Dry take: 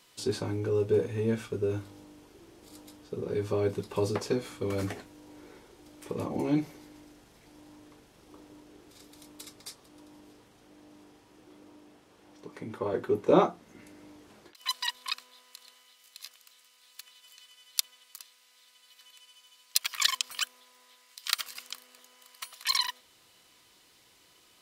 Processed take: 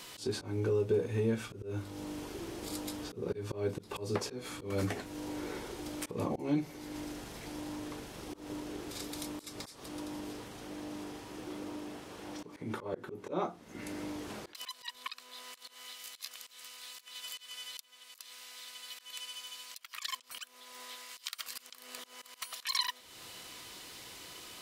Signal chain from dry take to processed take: compression 2.5:1, threshold -48 dBFS, peak gain reduction 21 dB; slow attack 175 ms; trim +12.5 dB

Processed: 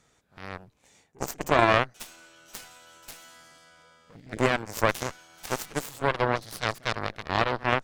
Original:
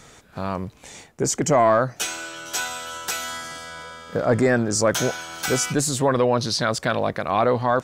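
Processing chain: pre-echo 55 ms -12.5 dB; time-frequency box 4.15–4.37 s, 340–1700 Hz -28 dB; Chebyshev shaper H 2 -11 dB, 3 -10 dB, 7 -32 dB, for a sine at -7 dBFS

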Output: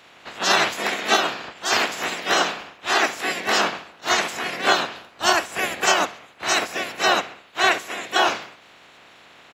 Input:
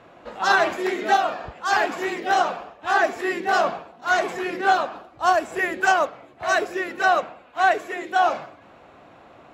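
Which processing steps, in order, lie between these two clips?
spectral peaks clipped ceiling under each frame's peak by 24 dB; high-pass 200 Hz 6 dB/octave; peaking EQ 700 Hz +3 dB 0.24 oct; on a send: feedback delay 67 ms, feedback 54%, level -23 dB

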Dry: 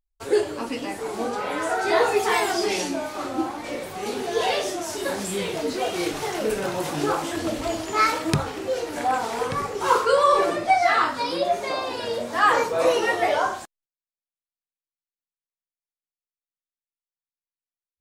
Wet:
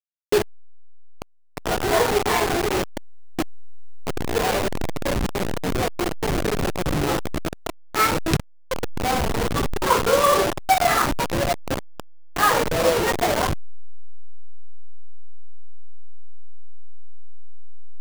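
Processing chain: send-on-delta sampling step -17 dBFS; trim +1.5 dB

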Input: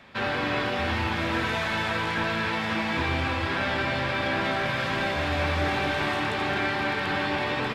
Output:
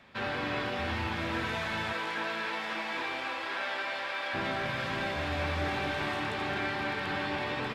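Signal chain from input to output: 1.92–4.33 s: high-pass 270 Hz -> 670 Hz 12 dB/octave; trim -6 dB

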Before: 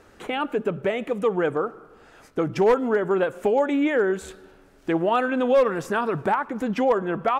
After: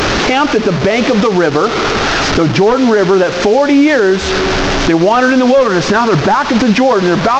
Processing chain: one-bit delta coder 32 kbps, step -30 dBFS; band-stop 480 Hz, Q 12; compression 6:1, threshold -28 dBFS, peak gain reduction 12.5 dB; loudness maximiser +24.5 dB; trim -1 dB

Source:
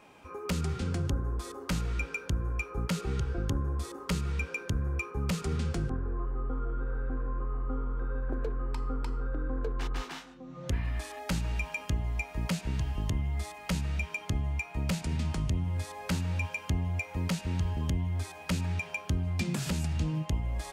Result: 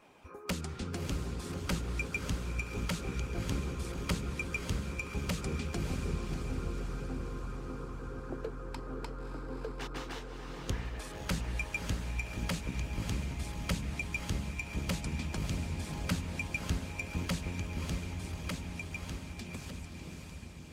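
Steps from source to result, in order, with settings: fade out at the end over 3.41 s; echo that smears into a reverb 597 ms, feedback 60%, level -3 dB; harmonic-percussive split harmonic -10 dB

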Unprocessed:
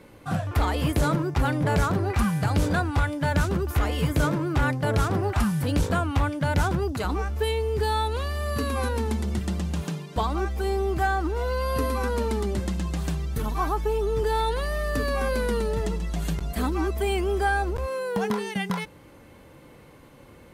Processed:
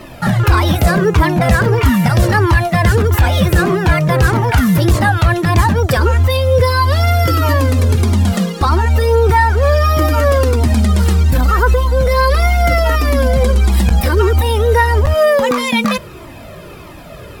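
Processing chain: tape speed +18%; loudness maximiser +21 dB; Shepard-style flanger falling 1.6 Hz

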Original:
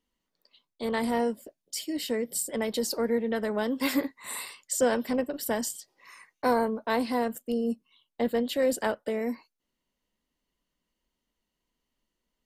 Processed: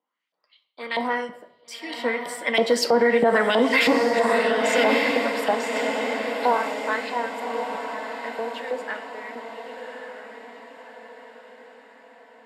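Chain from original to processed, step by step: Doppler pass-by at 3.32 s, 10 m/s, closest 5.6 m; dynamic bell 190 Hz, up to +6 dB, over -44 dBFS, Q 0.71; LFO band-pass saw up 3.1 Hz 710–3200 Hz; high-pass 120 Hz 24 dB/octave; echo that smears into a reverb 1150 ms, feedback 48%, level -7 dB; on a send at -8 dB: reverberation RT60 0.85 s, pre-delay 4 ms; on the sum: loudness maximiser +33.5 dB; trim -8.5 dB

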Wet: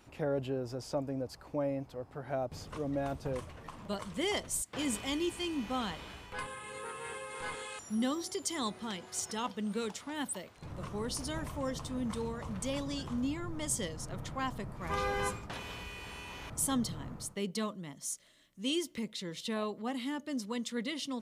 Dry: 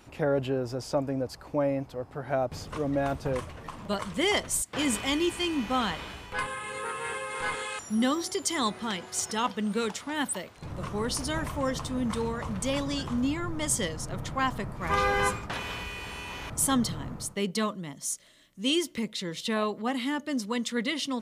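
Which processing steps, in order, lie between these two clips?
dynamic bell 1.6 kHz, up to -4 dB, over -40 dBFS, Q 0.77; trim -6 dB

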